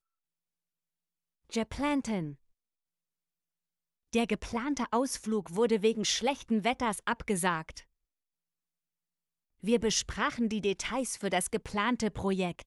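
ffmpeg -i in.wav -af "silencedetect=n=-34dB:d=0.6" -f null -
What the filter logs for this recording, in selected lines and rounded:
silence_start: 0.00
silence_end: 1.53 | silence_duration: 1.53
silence_start: 2.30
silence_end: 4.13 | silence_duration: 1.83
silence_start: 7.78
silence_end: 9.64 | silence_duration: 1.86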